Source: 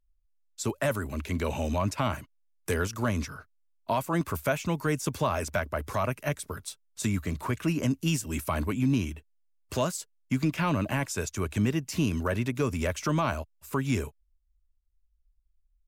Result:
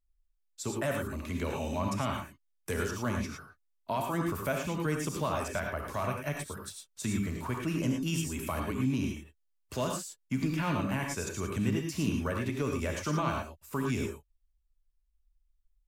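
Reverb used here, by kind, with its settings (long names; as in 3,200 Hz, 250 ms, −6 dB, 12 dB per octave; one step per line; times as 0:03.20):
reverb whose tail is shaped and stops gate 130 ms rising, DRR 1.5 dB
level −5.5 dB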